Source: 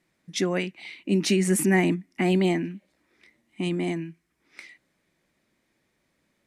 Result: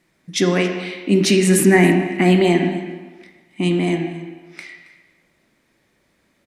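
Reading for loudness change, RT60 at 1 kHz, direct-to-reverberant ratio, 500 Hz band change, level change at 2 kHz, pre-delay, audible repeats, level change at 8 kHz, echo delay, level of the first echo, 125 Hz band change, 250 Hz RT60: +8.0 dB, 1.4 s, 3.5 dB, +9.5 dB, +9.0 dB, 28 ms, 1, +7.5 dB, 273 ms, −17.5 dB, +8.5 dB, 1.3 s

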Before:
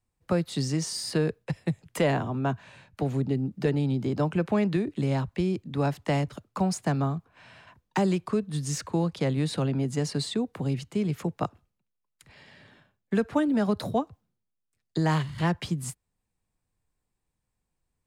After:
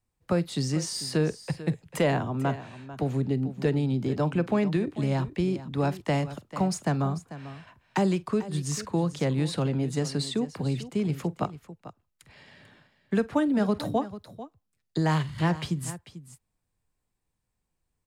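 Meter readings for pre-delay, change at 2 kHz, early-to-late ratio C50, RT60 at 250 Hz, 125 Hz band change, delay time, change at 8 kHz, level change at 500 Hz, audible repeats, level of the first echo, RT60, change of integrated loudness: no reverb audible, 0.0 dB, no reverb audible, no reverb audible, 0.0 dB, 46 ms, 0.0 dB, 0.0 dB, 2, −20.0 dB, no reverb audible, 0.0 dB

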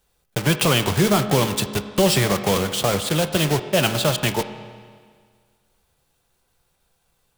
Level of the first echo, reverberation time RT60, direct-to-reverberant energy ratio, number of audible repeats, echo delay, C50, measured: no echo audible, 1.8 s, 9.0 dB, no echo audible, no echo audible, 10.5 dB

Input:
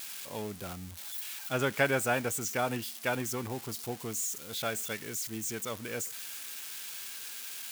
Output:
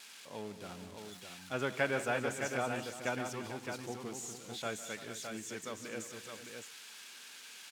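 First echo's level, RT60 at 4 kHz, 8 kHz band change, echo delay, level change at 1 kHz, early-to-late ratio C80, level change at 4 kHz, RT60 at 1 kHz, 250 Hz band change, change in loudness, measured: −16.5 dB, no reverb audible, −9.0 dB, 152 ms, −4.0 dB, no reverb audible, −5.5 dB, no reverb audible, −4.5 dB, −5.5 dB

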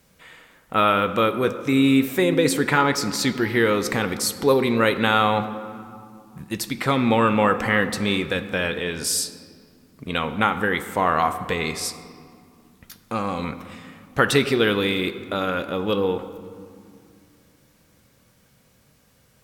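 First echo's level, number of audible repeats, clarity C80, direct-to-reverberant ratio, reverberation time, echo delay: no echo audible, no echo audible, 12.5 dB, 9.0 dB, 2.4 s, no echo audible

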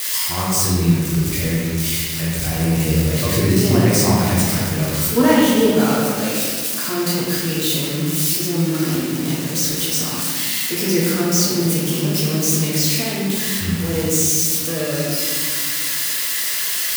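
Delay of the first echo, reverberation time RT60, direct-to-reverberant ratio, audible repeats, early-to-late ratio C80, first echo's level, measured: no echo audible, 1.8 s, −7.0 dB, no echo audible, 0.0 dB, no echo audible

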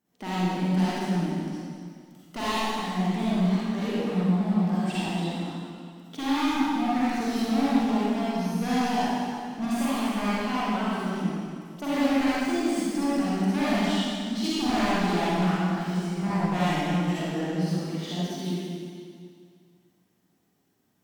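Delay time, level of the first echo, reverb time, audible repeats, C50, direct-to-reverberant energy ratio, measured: no echo audible, no echo audible, 2.2 s, no echo audible, −7.5 dB, −10.5 dB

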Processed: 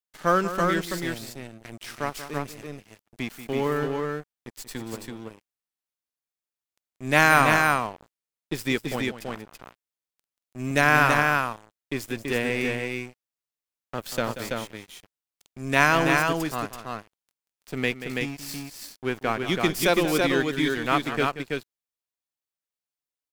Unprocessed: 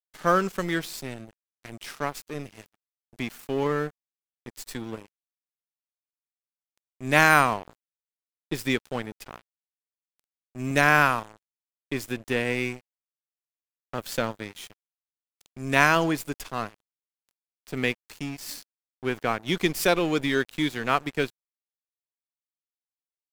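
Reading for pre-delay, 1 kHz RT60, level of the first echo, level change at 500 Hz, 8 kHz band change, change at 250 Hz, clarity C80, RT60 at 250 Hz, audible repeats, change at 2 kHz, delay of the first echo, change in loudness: no reverb audible, no reverb audible, −12.0 dB, +2.0 dB, +2.0 dB, +2.0 dB, no reverb audible, no reverb audible, 2, +2.0 dB, 184 ms, +1.0 dB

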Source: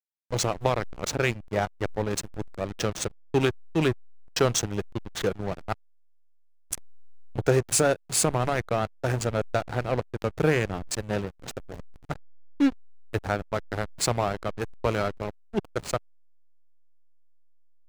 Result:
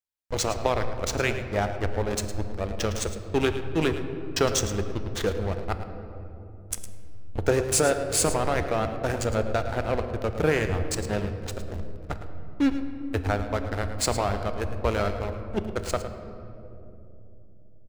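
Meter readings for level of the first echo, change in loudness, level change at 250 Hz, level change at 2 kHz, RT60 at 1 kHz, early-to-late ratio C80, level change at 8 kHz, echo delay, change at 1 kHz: −12.5 dB, +0.5 dB, +0.5 dB, +0.5 dB, 2.3 s, 8.5 dB, +0.5 dB, 109 ms, +1.0 dB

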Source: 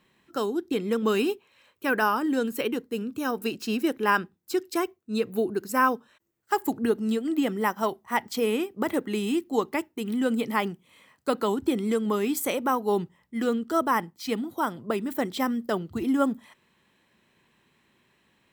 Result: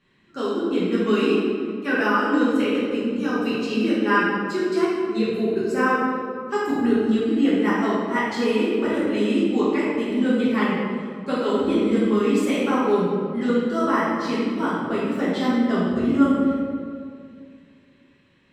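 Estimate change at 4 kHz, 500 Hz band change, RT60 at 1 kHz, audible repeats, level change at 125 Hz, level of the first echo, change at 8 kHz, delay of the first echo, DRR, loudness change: +3.5 dB, +5.5 dB, 2.0 s, no echo audible, +7.5 dB, no echo audible, can't be measured, no echo audible, −9.5 dB, +5.5 dB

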